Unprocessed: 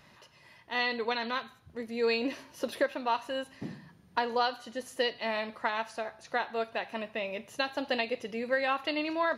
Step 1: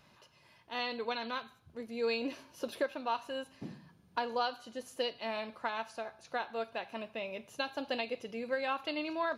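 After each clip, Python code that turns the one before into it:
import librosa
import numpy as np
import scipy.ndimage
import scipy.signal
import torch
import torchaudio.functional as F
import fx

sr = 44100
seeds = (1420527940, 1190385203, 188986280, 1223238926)

y = fx.notch(x, sr, hz=1900.0, q=7.2)
y = F.gain(torch.from_numpy(y), -4.5).numpy()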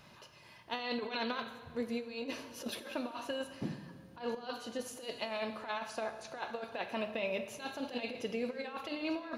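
y = fx.over_compress(x, sr, threshold_db=-39.0, ratio=-0.5)
y = fx.rev_plate(y, sr, seeds[0], rt60_s=1.9, hf_ratio=0.75, predelay_ms=0, drr_db=9.5)
y = F.gain(torch.from_numpy(y), 1.5).numpy()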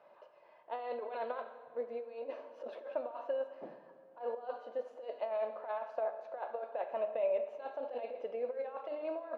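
y = fx.ladder_bandpass(x, sr, hz=660.0, resonance_pct=55)
y = F.gain(torch.from_numpy(y), 9.5).numpy()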